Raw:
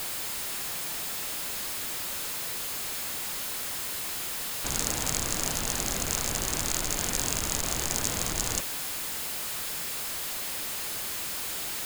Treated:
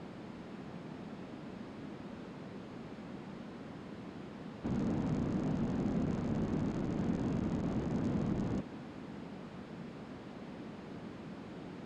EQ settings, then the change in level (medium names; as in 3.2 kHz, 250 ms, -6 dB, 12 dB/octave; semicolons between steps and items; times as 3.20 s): band-pass filter 210 Hz, Q 1.8; distance through air 100 m; +8.5 dB